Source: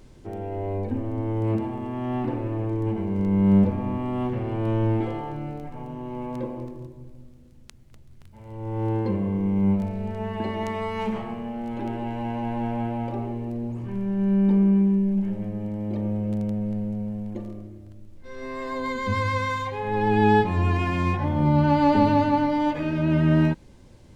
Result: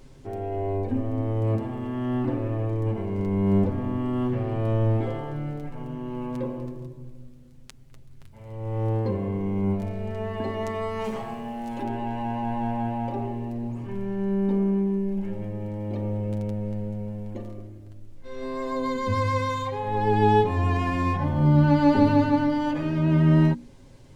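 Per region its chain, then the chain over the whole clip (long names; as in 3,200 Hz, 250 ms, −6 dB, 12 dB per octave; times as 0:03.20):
0:11.04–0:11.83: bass and treble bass −3 dB, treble +9 dB + one half of a high-frequency compander decoder only
whole clip: mains-hum notches 60/120/180/240/300/360/420 Hz; dynamic equaliser 2,500 Hz, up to −4 dB, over −42 dBFS, Q 0.97; comb filter 7.4 ms, depth 49%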